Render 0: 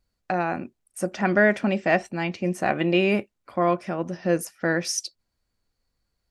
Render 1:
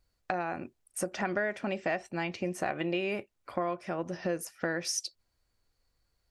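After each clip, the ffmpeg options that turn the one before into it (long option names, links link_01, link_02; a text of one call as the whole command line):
ffmpeg -i in.wav -af "equalizer=frequency=210:width=2:gain=-6.5,acompressor=threshold=-31dB:ratio=4,volume=1dB" out.wav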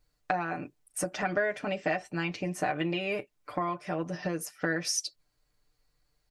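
ffmpeg -i in.wav -af "aecho=1:1:6.7:0.81" out.wav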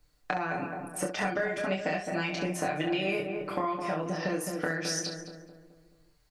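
ffmpeg -i in.wav -filter_complex "[0:a]asplit=2[link_01][link_02];[link_02]adelay=213,lowpass=frequency=1300:poles=1,volume=-8dB,asplit=2[link_03][link_04];[link_04]adelay=213,lowpass=frequency=1300:poles=1,volume=0.51,asplit=2[link_05][link_06];[link_06]adelay=213,lowpass=frequency=1300:poles=1,volume=0.51,asplit=2[link_07][link_08];[link_08]adelay=213,lowpass=frequency=1300:poles=1,volume=0.51,asplit=2[link_09][link_10];[link_10]adelay=213,lowpass=frequency=1300:poles=1,volume=0.51,asplit=2[link_11][link_12];[link_12]adelay=213,lowpass=frequency=1300:poles=1,volume=0.51[link_13];[link_03][link_05][link_07][link_09][link_11][link_13]amix=inputs=6:normalize=0[link_14];[link_01][link_14]amix=inputs=2:normalize=0,acrossover=split=180|4100[link_15][link_16][link_17];[link_15]acompressor=threshold=-49dB:ratio=4[link_18];[link_16]acompressor=threshold=-34dB:ratio=4[link_19];[link_17]acompressor=threshold=-44dB:ratio=4[link_20];[link_18][link_19][link_20]amix=inputs=3:normalize=0,asplit=2[link_21][link_22];[link_22]aecho=0:1:26|67:0.668|0.398[link_23];[link_21][link_23]amix=inputs=2:normalize=0,volume=4dB" out.wav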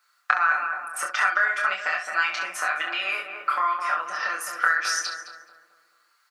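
ffmpeg -i in.wav -af "highpass=frequency=1300:width_type=q:width=6.2,volume=4.5dB" out.wav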